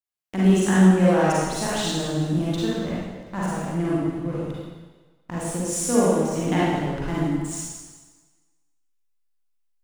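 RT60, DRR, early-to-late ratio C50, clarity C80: 1.3 s, -8.5 dB, -5.5 dB, -1.0 dB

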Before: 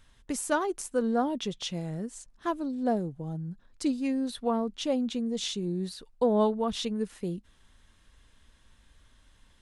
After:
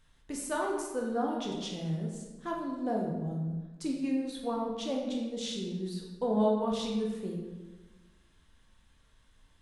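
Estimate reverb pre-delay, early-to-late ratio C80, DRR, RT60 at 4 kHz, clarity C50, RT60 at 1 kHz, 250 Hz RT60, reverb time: 15 ms, 5.0 dB, -1.0 dB, 0.85 s, 2.5 dB, 1.2 s, 1.5 s, 1.3 s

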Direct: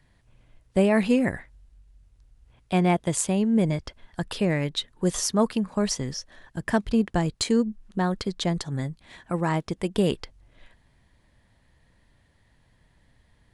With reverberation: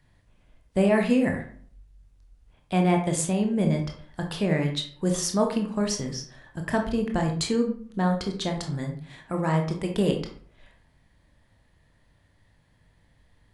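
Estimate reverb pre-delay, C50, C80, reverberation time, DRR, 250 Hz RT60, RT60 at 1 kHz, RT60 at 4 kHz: 19 ms, 7.0 dB, 12.0 dB, 0.55 s, 2.5 dB, 0.60 s, 0.50 s, 0.35 s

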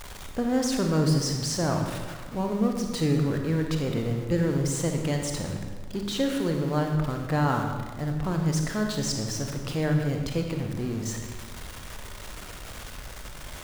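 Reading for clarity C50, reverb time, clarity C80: 4.0 dB, 1.4 s, 6.0 dB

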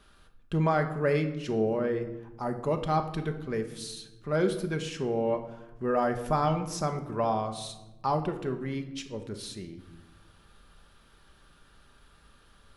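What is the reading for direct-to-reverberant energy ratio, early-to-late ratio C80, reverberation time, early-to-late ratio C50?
5.5 dB, 13.0 dB, 1.0 s, 10.5 dB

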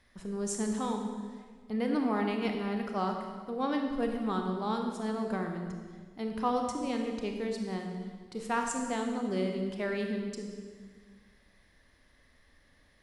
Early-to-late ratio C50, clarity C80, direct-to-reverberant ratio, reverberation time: 4.0 dB, 5.5 dB, 2.5 dB, 1.6 s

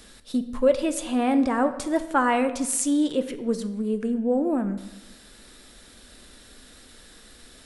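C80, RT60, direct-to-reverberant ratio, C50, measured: 14.0 dB, 1.0 s, 9.0 dB, 12.0 dB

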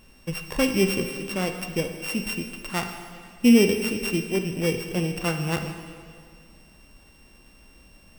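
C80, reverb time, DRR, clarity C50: 8.0 dB, 1.9 s, 5.0 dB, 6.5 dB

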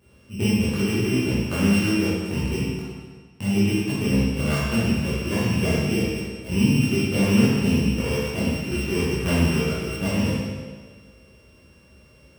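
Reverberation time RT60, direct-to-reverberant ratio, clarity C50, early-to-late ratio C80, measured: 1.5 s, -9.5 dB, -2.5 dB, 0.5 dB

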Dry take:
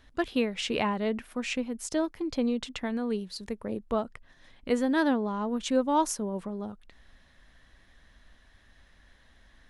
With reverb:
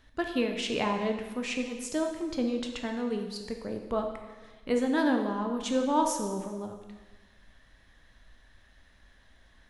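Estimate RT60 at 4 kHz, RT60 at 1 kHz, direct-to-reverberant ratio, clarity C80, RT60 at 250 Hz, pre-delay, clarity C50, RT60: 1.2 s, 1.3 s, 3.5 dB, 7.5 dB, 1.2 s, 7 ms, 5.5 dB, 1.3 s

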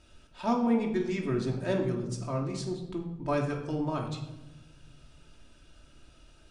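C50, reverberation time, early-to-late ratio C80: 7.0 dB, 1.0 s, 9.5 dB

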